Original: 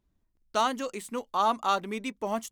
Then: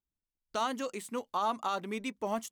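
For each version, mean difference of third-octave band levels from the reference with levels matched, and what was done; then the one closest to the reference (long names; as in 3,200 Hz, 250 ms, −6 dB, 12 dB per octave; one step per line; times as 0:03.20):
2.0 dB: noise reduction from a noise print of the clip's start 18 dB
brickwall limiter −19.5 dBFS, peak gain reduction 7 dB
level −2.5 dB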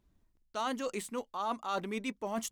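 4.0 dB: high-shelf EQ 11,000 Hz −3.5 dB
reversed playback
downward compressor 6 to 1, threshold −36 dBFS, peak gain reduction 14.5 dB
reversed playback
level +3.5 dB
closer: first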